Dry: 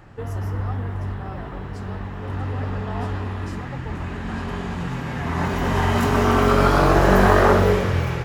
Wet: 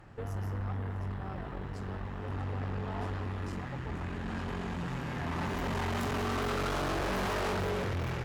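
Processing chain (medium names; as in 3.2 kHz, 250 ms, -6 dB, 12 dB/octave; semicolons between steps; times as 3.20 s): valve stage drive 26 dB, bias 0.55; trim -4.5 dB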